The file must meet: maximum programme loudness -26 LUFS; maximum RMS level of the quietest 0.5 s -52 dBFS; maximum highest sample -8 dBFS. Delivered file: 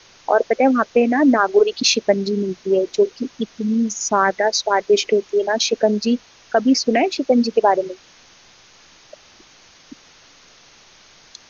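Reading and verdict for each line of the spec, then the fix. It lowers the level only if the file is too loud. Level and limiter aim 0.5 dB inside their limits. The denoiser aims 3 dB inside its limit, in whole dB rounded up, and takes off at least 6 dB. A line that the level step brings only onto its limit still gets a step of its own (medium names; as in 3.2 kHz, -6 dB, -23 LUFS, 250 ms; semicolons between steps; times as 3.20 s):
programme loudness -18.0 LUFS: fail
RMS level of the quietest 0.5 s -49 dBFS: fail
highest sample -4.0 dBFS: fail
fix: trim -8.5 dB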